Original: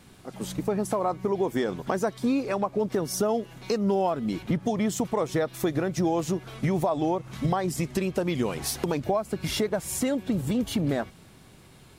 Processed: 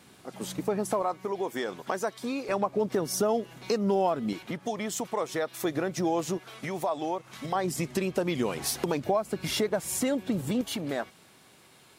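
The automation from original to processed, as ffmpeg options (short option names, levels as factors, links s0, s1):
-af "asetnsamples=n=441:p=0,asendcmd='1.02 highpass f 650;2.49 highpass f 170;4.33 highpass f 620;5.65 highpass f 300;6.38 highpass f 730;7.55 highpass f 190;10.61 highpass f 540',highpass=f=240:p=1"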